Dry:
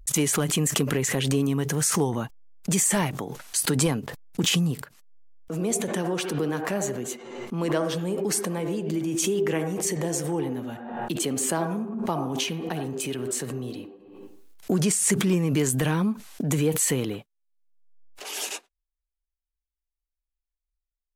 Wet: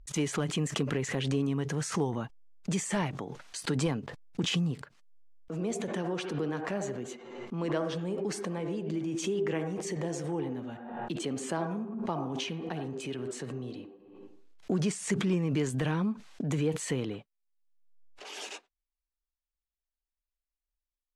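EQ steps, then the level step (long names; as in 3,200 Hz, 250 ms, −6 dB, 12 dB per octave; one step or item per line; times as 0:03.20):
high-frequency loss of the air 93 metres
−5.5 dB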